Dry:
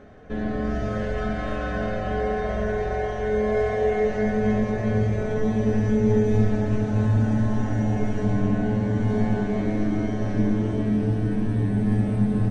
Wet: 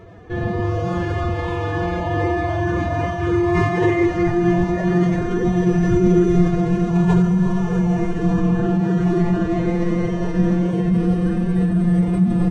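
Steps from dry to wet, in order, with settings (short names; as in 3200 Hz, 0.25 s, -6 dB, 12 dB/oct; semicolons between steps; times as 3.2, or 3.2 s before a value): hum 60 Hz, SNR 30 dB; added harmonics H 7 -40 dB, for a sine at -8.5 dBFS; formant-preserving pitch shift +8.5 st; gain +5.5 dB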